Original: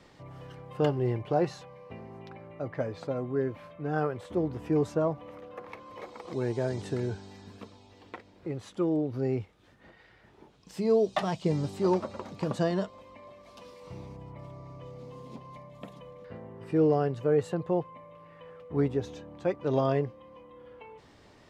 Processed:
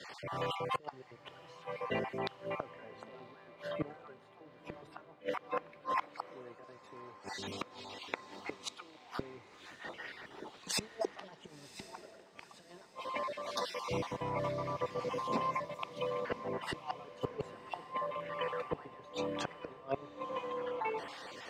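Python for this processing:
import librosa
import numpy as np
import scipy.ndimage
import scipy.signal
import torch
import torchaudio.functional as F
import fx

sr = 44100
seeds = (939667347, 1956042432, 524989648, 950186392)

y = fx.spec_dropout(x, sr, seeds[0], share_pct=32)
y = fx.highpass(y, sr, hz=940.0, slope=6)
y = fx.high_shelf(y, sr, hz=5500.0, db=-8.5)
y = fx.over_compress(y, sr, threshold_db=-39.0, ratio=-0.5)
y = fx.gate_flip(y, sr, shuts_db=-38.0, range_db=-27)
y = fx.echo_diffused(y, sr, ms=1035, feedback_pct=57, wet_db=-12.5)
y = fx.band_widen(y, sr, depth_pct=40)
y = F.gain(torch.from_numpy(y), 15.0).numpy()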